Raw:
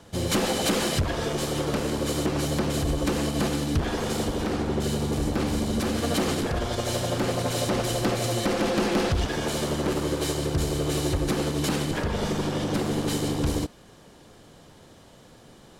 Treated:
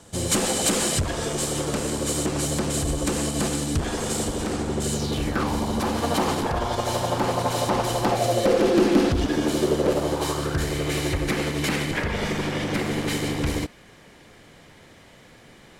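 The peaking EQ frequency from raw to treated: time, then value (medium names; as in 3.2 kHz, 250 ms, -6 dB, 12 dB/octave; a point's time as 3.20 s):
peaking EQ +11.5 dB 0.68 oct
4.92 s 8.1 kHz
5.49 s 920 Hz
8.03 s 920 Hz
8.92 s 290 Hz
9.52 s 290 Hz
10.75 s 2.1 kHz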